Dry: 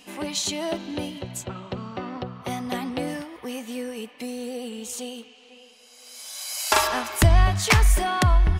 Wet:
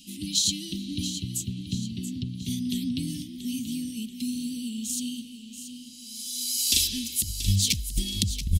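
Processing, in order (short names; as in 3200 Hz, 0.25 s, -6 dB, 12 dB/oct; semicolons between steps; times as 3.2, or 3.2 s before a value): elliptic band-stop 240–3400 Hz, stop band 50 dB; negative-ratio compressor -23 dBFS, ratio -0.5; feedback echo 0.682 s, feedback 46%, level -11 dB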